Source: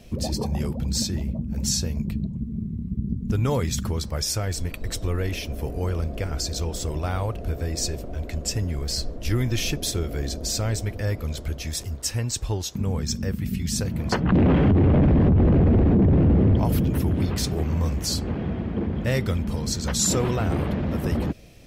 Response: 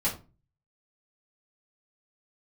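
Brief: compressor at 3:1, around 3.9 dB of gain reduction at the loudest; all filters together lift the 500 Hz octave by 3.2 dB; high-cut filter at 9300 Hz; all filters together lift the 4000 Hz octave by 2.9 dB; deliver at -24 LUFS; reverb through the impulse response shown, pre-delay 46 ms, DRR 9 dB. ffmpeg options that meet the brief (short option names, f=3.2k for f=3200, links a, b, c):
-filter_complex "[0:a]lowpass=9.3k,equalizer=f=500:t=o:g=4,equalizer=f=4k:t=o:g=4,acompressor=threshold=-19dB:ratio=3,asplit=2[a][b];[1:a]atrim=start_sample=2205,adelay=46[c];[b][c]afir=irnorm=-1:irlink=0,volume=-17dB[d];[a][d]amix=inputs=2:normalize=0,volume=0.5dB"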